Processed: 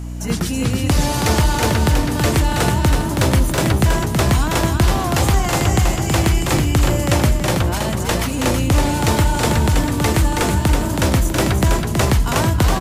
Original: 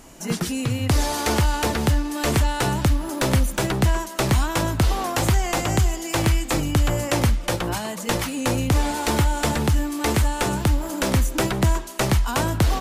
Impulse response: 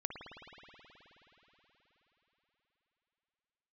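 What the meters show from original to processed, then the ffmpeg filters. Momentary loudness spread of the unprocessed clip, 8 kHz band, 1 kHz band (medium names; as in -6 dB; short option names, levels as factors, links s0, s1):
3 LU, +4.5 dB, +4.5 dB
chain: -filter_complex "[0:a]aeval=exprs='val(0)+0.0355*(sin(2*PI*60*n/s)+sin(2*PI*2*60*n/s)/2+sin(2*PI*3*60*n/s)/3+sin(2*PI*4*60*n/s)/4+sin(2*PI*5*60*n/s)/5)':c=same,asplit=5[s0][s1][s2][s3][s4];[s1]adelay=324,afreqshift=30,volume=0.596[s5];[s2]adelay=648,afreqshift=60,volume=0.209[s6];[s3]adelay=972,afreqshift=90,volume=0.0733[s7];[s4]adelay=1296,afreqshift=120,volume=0.0254[s8];[s0][s5][s6][s7][s8]amix=inputs=5:normalize=0,volume=1.41"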